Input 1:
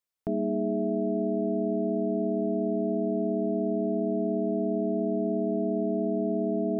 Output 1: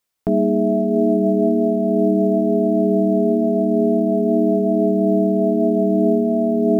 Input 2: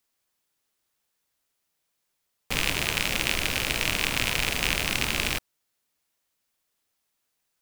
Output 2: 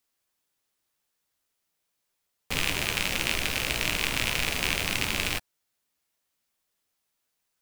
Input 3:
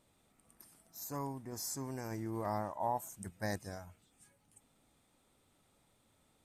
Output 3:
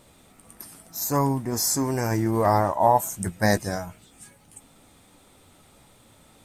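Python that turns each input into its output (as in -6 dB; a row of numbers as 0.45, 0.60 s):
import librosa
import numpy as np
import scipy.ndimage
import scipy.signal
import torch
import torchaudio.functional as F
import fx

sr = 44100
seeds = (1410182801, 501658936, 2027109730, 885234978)

y = fx.chorus_voices(x, sr, voices=2, hz=0.39, base_ms=14, depth_ms=3.9, mix_pct=25)
y = fx.quant_float(y, sr, bits=6)
y = librosa.util.normalize(y) * 10.0 ** (-6 / 20.0)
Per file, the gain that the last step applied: +13.0, +0.5, +19.0 dB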